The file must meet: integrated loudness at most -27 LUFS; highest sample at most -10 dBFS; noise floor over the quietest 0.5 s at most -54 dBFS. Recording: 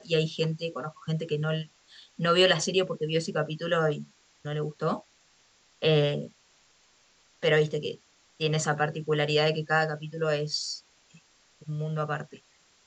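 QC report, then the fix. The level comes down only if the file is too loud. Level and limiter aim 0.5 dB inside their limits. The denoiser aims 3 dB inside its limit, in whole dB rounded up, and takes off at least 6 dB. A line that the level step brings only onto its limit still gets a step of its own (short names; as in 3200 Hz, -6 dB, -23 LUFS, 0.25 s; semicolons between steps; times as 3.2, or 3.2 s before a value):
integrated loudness -28.0 LUFS: OK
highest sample -9.0 dBFS: fail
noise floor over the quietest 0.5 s -63 dBFS: OK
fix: limiter -10.5 dBFS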